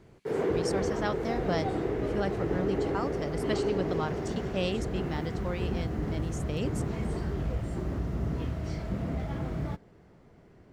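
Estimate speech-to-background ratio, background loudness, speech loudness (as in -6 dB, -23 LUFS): -3.5 dB, -32.5 LUFS, -36.0 LUFS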